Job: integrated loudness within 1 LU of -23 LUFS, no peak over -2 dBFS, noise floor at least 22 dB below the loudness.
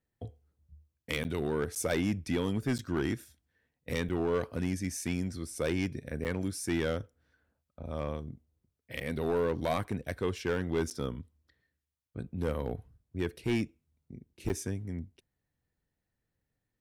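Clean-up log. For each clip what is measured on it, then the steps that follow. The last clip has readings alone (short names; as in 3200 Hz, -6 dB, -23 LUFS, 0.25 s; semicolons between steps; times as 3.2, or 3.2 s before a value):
clipped 0.9%; flat tops at -23.0 dBFS; dropouts 8; longest dropout 8.9 ms; loudness -34.0 LUFS; peak -23.0 dBFS; loudness target -23.0 LUFS
-> clip repair -23 dBFS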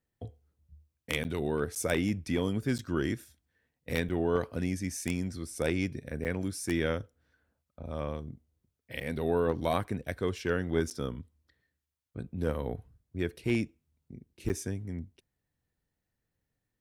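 clipped 0.0%; dropouts 8; longest dropout 8.9 ms
-> interpolate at 1.24/1.75/2.78/4.09/6.24/9/10.9/14.49, 8.9 ms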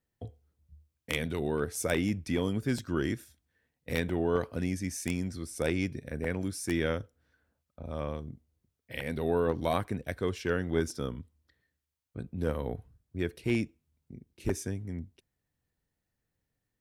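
dropouts 0; loudness -33.0 LUFS; peak -14.0 dBFS; loudness target -23.0 LUFS
-> gain +10 dB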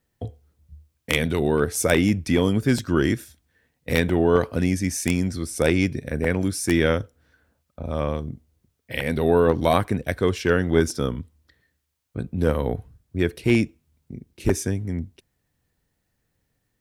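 loudness -23.0 LUFS; peak -4.0 dBFS; noise floor -75 dBFS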